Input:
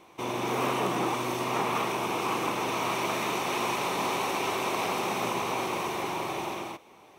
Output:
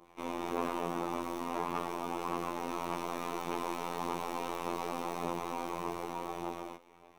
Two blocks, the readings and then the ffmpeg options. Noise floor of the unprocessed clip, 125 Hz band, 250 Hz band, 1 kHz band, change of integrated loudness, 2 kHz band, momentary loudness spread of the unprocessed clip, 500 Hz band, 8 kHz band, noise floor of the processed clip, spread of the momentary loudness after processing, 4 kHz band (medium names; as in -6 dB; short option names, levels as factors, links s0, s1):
-54 dBFS, -8.5 dB, -5.0 dB, -7.5 dB, -8.0 dB, -12.5 dB, 4 LU, -7.0 dB, -12.0 dB, -60 dBFS, 4 LU, -13.5 dB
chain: -filter_complex "[0:a]adynamicequalizer=threshold=0.00501:dfrequency=2300:dqfactor=1.1:tfrequency=2300:tqfactor=1.1:attack=5:release=100:ratio=0.375:range=3:mode=cutabove:tftype=bell,acrossover=split=120|600|2600[s0][s1][s2][s3];[s3]aeval=exprs='max(val(0),0)':c=same[s4];[s0][s1][s2][s4]amix=inputs=4:normalize=0,aphaser=in_gain=1:out_gain=1:delay=4.2:decay=0.34:speed=1.7:type=sinusoidal,asoftclip=type=tanh:threshold=0.112,afftfilt=real='hypot(re,im)*cos(PI*b)':imag='0':win_size=2048:overlap=0.75,volume=0.708"